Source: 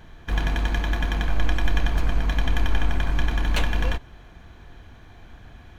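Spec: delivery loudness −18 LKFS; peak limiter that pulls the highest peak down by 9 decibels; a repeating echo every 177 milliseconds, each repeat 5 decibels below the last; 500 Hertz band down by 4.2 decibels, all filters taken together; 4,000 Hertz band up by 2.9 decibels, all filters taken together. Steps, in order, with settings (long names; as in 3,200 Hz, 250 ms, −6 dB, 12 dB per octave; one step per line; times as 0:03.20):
parametric band 500 Hz −6 dB
parametric band 4,000 Hz +4 dB
brickwall limiter −14 dBFS
repeating echo 177 ms, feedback 56%, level −5 dB
level +7.5 dB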